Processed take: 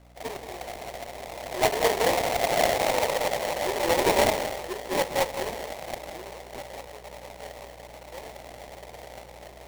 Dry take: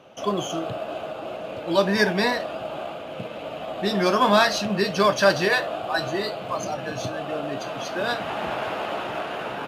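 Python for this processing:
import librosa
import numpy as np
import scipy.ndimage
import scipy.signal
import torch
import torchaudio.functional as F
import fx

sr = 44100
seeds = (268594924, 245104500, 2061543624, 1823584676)

y = fx.doppler_pass(x, sr, speed_mps=28, closest_m=7.9, pass_at_s=2.82)
y = scipy.signal.sosfilt(scipy.signal.butter(6, 440.0, 'highpass', fs=sr, output='sos'), y)
y = fx.tilt_shelf(y, sr, db=10.0, hz=1400.0)
y = fx.add_hum(y, sr, base_hz=60, snr_db=25)
y = fx.band_shelf(y, sr, hz=2200.0, db=-9.0, octaves=1.7)
y = y + 10.0 ** (-10.0 / 20.0) * np.pad(y, (int(185 * sr / 1000.0), 0))[:len(y)]
y = fx.sample_hold(y, sr, seeds[0], rate_hz=1400.0, jitter_pct=20)
y = F.gain(torch.from_numpy(y), 6.0).numpy()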